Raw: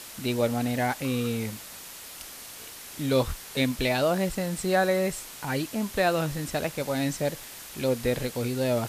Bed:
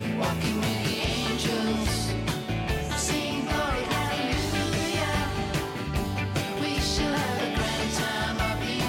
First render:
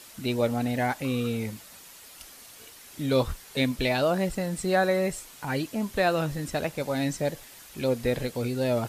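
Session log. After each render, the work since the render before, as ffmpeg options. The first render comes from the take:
-af "afftdn=nr=7:nf=-43"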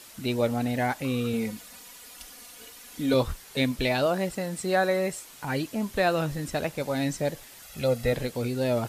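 -filter_complex "[0:a]asettb=1/sr,asplit=3[s0][s1][s2];[s0]atrim=end=1.334[s3];[s1]atrim=start=1.33:end=3.14,asetpts=PTS-STARTPTS,afade=t=in:d=0.004:c=qsin,afade=t=out:st=1.806:d=0.004:c=qsin,aecho=1:1:4.1:0.65,atrim=end_sample=79821[s4];[s2]atrim=start=3.136[s5];[s3][s4]acrossfade=d=0.004:c1=hsin:c2=qsin[s6];[s6][s5]acrossfade=d=0.004:c1=qsin:c2=hsin,asettb=1/sr,asplit=3[s7][s8][s9];[s7]atrim=end=4.064[s10];[s8]atrim=start=4.06:end=5.29,asetpts=PTS-STARTPTS,afade=t=in:d=0.004:c=qsin,afade=t=out:st=1.226:d=0.004:c=qsin,highpass=f=180:p=1[s11];[s9]atrim=start=5.286[s12];[s10][s11]acrossfade=d=0.004:c1=hsin:c2=qsin[s13];[s13][s12]acrossfade=d=0.004:c1=qsin:c2=hsin,asettb=1/sr,asplit=3[s14][s15][s16];[s14]atrim=end=7.624[s17];[s15]atrim=start=7.62:end=8.13,asetpts=PTS-STARTPTS,afade=t=in:d=0.004:c=qsin,afade=t=out:st=0.506:d=0.004:c=qsin,aecho=1:1:1.5:0.65,atrim=end_sample=22491[s18];[s16]atrim=start=8.126[s19];[s17][s18]acrossfade=d=0.004:c1=hsin:c2=qsin[s20];[s20][s19]acrossfade=d=0.004:c1=qsin:c2=hsin"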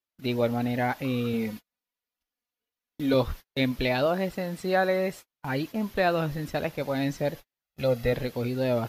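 -af "agate=range=0.00794:threshold=0.0141:ratio=16:detection=peak,equalizer=f=8400:w=1.5:g=-14"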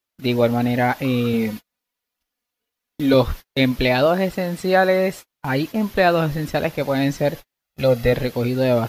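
-af "volume=2.51"

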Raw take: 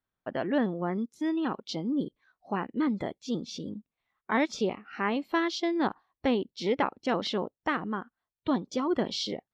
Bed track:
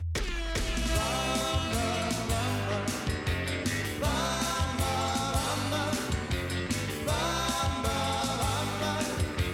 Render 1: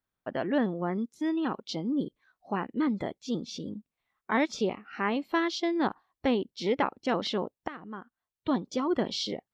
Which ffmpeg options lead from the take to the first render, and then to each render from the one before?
-filter_complex "[0:a]asplit=2[s0][s1];[s0]atrim=end=7.68,asetpts=PTS-STARTPTS,afade=t=out:st=7.676:d=0.004:c=hsin:silence=0.158489[s2];[s1]atrim=start=7.68,asetpts=PTS-STARTPTS,afade=t=in:d=0.88:silence=0.158489[s3];[s2][s3]concat=n=2:v=0:a=1"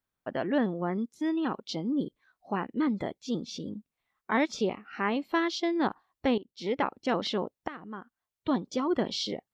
-filter_complex "[0:a]asplit=2[s0][s1];[s0]atrim=end=6.38,asetpts=PTS-STARTPTS,afade=t=out:st=6.376:d=0.004:c=hsin:silence=0.141254[s2];[s1]atrim=start=6.38,asetpts=PTS-STARTPTS,afade=t=in:d=0.69:c=qsin:silence=0.141254[s3];[s2][s3]concat=n=2:v=0:a=1"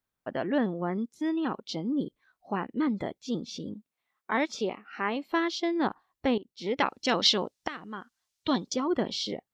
-filter_complex "[0:a]asettb=1/sr,asplit=3[s0][s1][s2];[s0]atrim=end=3.744[s3];[s1]atrim=start=3.74:end=5.32,asetpts=PTS-STARTPTS,afade=t=in:d=0.004:c=qsin,afade=t=out:st=1.576:d=0.004:c=qsin,highpass=f=270:p=1[s4];[s2]atrim=start=5.316[s5];[s3][s4]acrossfade=d=0.004:c1=hsin:c2=qsin[s6];[s6][s5]acrossfade=d=0.004:c1=qsin:c2=hsin,asplit=3[s7][s8][s9];[s7]afade=t=out:st=6.77:d=0.02[s10];[s8]equalizer=f=5400:t=o:w=2.2:g=15,afade=t=in:st=6.77:d=0.02,afade=t=out:st=8.72:d=0.02[s11];[s9]afade=t=in:st=8.72:d=0.02[s12];[s10][s11][s12]amix=inputs=3:normalize=0"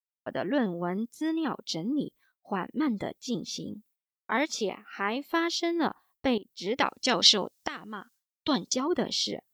-af "aemphasis=mode=production:type=50fm,agate=range=0.0224:threshold=0.002:ratio=3:detection=peak"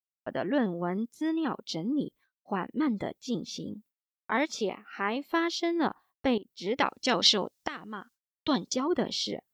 -af "agate=range=0.0224:threshold=0.00251:ratio=3:detection=peak,highshelf=f=4500:g=-6.5"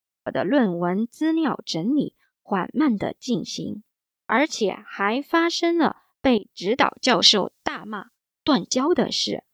-af "volume=2.51,alimiter=limit=0.794:level=0:latency=1"

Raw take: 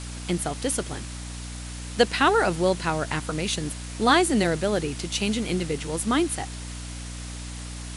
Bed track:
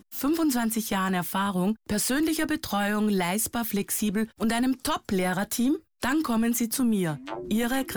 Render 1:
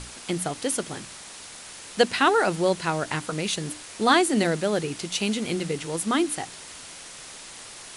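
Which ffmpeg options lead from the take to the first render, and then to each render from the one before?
-af "bandreject=f=60:t=h:w=6,bandreject=f=120:t=h:w=6,bandreject=f=180:t=h:w=6,bandreject=f=240:t=h:w=6,bandreject=f=300:t=h:w=6"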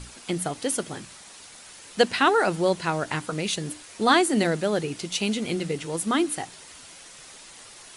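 -af "afftdn=nr=6:nf=-43"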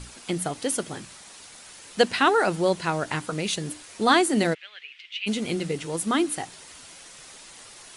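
-filter_complex "[0:a]asplit=3[s0][s1][s2];[s0]afade=t=out:st=4.53:d=0.02[s3];[s1]asuperpass=centerf=2500:order=4:qfactor=1.9,afade=t=in:st=4.53:d=0.02,afade=t=out:st=5.26:d=0.02[s4];[s2]afade=t=in:st=5.26:d=0.02[s5];[s3][s4][s5]amix=inputs=3:normalize=0"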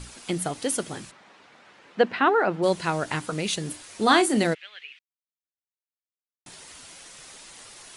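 -filter_complex "[0:a]asplit=3[s0][s1][s2];[s0]afade=t=out:st=1.1:d=0.02[s3];[s1]highpass=160,lowpass=2100,afade=t=in:st=1.1:d=0.02,afade=t=out:st=2.62:d=0.02[s4];[s2]afade=t=in:st=2.62:d=0.02[s5];[s3][s4][s5]amix=inputs=3:normalize=0,asettb=1/sr,asplit=3[s6][s7][s8];[s6]atrim=end=3.684[s9];[s7]atrim=start=3.68:end=4.38,asetpts=PTS-STARTPTS,afade=t=in:d=0.004:c=qsin,afade=t=out:st=0.696:d=0.004:c=qsin,asplit=2[s10][s11];[s11]adelay=32,volume=0.282[s12];[s10][s12]amix=inputs=2:normalize=0,atrim=end_sample=30870[s13];[s8]atrim=start=4.376[s14];[s9][s13]acrossfade=d=0.004:c1=hsin:c2=qsin[s15];[s15][s14]acrossfade=d=0.004:c1=qsin:c2=hsin,asplit=3[s16][s17][s18];[s16]atrim=end=4.99,asetpts=PTS-STARTPTS,afade=t=out:st=4.986:d=0.004:c=hsin[s19];[s17]atrim=start=4.99:end=6.46,asetpts=PTS-STARTPTS,volume=0[s20];[s18]atrim=start=6.46,asetpts=PTS-STARTPTS,afade=t=in:d=0.004:c=hsin[s21];[s19][s20][s21]concat=n=3:v=0:a=1"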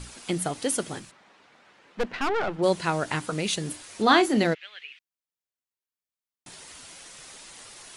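-filter_complex "[0:a]asettb=1/sr,asplit=3[s0][s1][s2];[s0]atrim=end=0.994[s3];[s1]atrim=start=0.99:end=2.59,asetpts=PTS-STARTPTS,afade=t=in:d=0.004:c=qsin,afade=t=out:st=1.596:d=0.004:c=qsin,aeval=exprs='(tanh(12.6*val(0)+0.7)-tanh(0.7))/12.6':c=same[s4];[s2]atrim=start=2.586[s5];[s3][s4]acrossfade=d=0.004:c1=hsin:c2=qsin[s6];[s6][s5]acrossfade=d=0.004:c1=qsin:c2=hsin,asettb=1/sr,asplit=3[s7][s8][s9];[s7]atrim=end=4.024[s10];[s8]atrim=start=4.02:end=4.62,asetpts=PTS-STARTPTS,afade=t=in:d=0.004:c=qsin,afade=t=out:st=0.596:d=0.004:c=qsin,equalizer=f=8900:w=2.7:g=-14.5[s11];[s9]atrim=start=4.616[s12];[s10][s11]acrossfade=d=0.004:c1=hsin:c2=qsin[s13];[s13][s12]acrossfade=d=0.004:c1=qsin:c2=hsin"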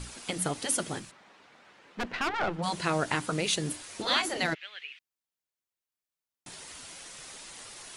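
-af "afftfilt=real='re*lt(hypot(re,im),0.316)':imag='im*lt(hypot(re,im),0.316)':win_size=1024:overlap=0.75"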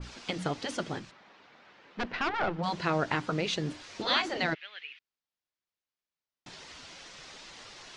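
-af "lowpass=f=5700:w=0.5412,lowpass=f=5700:w=1.3066,adynamicequalizer=threshold=0.00631:dfrequency=2300:dqfactor=0.7:tfrequency=2300:tqfactor=0.7:attack=5:release=100:ratio=0.375:range=2:mode=cutabove:tftype=highshelf"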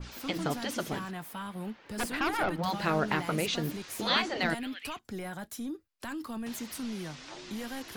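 -filter_complex "[1:a]volume=0.224[s0];[0:a][s0]amix=inputs=2:normalize=0"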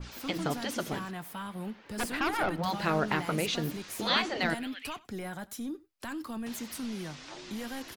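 -filter_complex "[0:a]asplit=2[s0][s1];[s1]adelay=93.29,volume=0.0794,highshelf=f=4000:g=-2.1[s2];[s0][s2]amix=inputs=2:normalize=0"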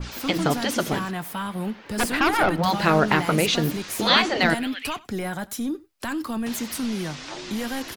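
-af "volume=2.99,alimiter=limit=0.708:level=0:latency=1"

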